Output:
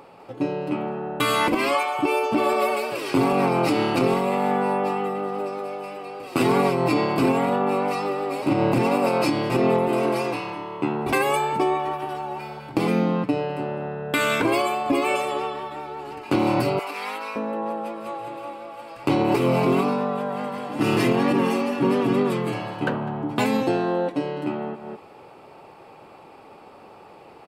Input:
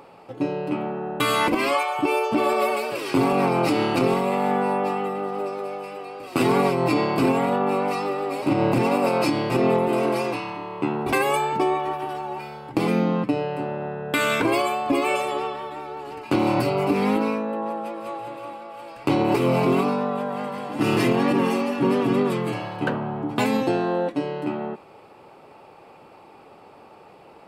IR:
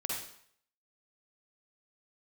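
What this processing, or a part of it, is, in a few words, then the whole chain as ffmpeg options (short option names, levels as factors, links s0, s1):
ducked delay: -filter_complex "[0:a]asplit=3[s0][s1][s2];[s1]adelay=204,volume=0.708[s3];[s2]apad=whole_len=1220485[s4];[s3][s4]sidechaincompress=threshold=0.00891:ratio=8:attack=16:release=189[s5];[s0][s5]amix=inputs=2:normalize=0,asettb=1/sr,asplit=3[s6][s7][s8];[s6]atrim=end=16.794[s9];[s7]atrim=start=16.79:end=17.36,asetpts=PTS-STARTPTS,afade=t=in:d=0.004:c=qsin,afade=t=out:st=0.566:d=0.004:c=qsin,highpass=1000[s10];[s8]atrim=start=17.356[s11];[s9][s10]acrossfade=d=0.004:c1=hsin:c2=qsin[s12];[s12][s11]acrossfade=d=0.004:c1=qsin:c2=hsin"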